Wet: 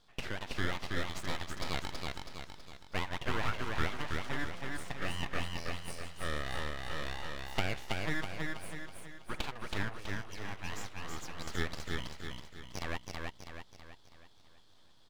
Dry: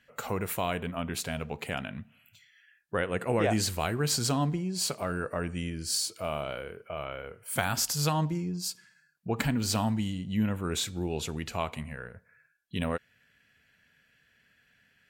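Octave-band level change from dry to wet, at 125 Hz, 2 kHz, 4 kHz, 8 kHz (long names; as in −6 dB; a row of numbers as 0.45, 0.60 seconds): −9.0, −0.5, −6.0, −15.5 decibels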